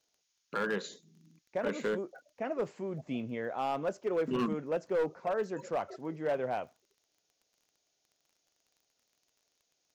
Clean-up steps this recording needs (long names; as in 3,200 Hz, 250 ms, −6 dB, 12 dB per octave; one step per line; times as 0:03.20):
clipped peaks rebuilt −25.5 dBFS
click removal
downward expander −71 dBFS, range −21 dB